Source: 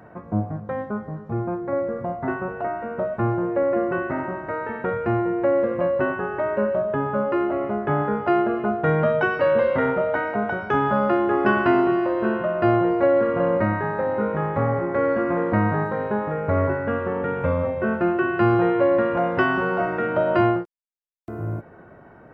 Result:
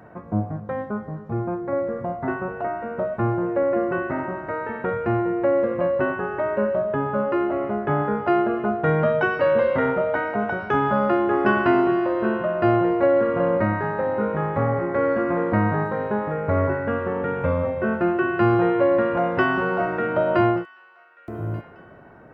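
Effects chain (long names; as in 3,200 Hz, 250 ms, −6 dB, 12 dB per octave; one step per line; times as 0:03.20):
delay with a high-pass on its return 1,185 ms, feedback 30%, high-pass 1,500 Hz, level −19.5 dB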